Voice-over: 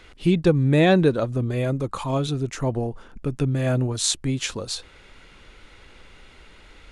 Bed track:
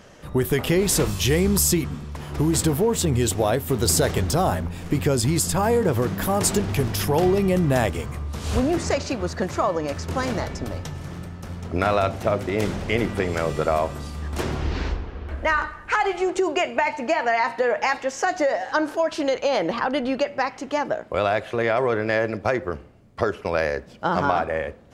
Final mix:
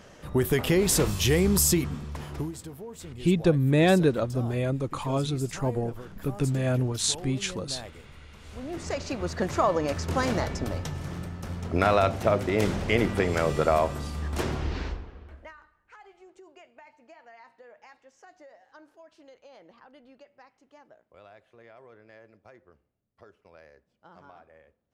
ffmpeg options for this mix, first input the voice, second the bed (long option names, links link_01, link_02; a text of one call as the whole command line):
ffmpeg -i stem1.wav -i stem2.wav -filter_complex "[0:a]adelay=3000,volume=-3.5dB[link_01];[1:a]volume=17dB,afade=type=out:start_time=2.19:duration=0.35:silence=0.125893,afade=type=in:start_time=8.56:duration=1.07:silence=0.105925,afade=type=out:start_time=14.19:duration=1.34:silence=0.0354813[link_02];[link_01][link_02]amix=inputs=2:normalize=0" out.wav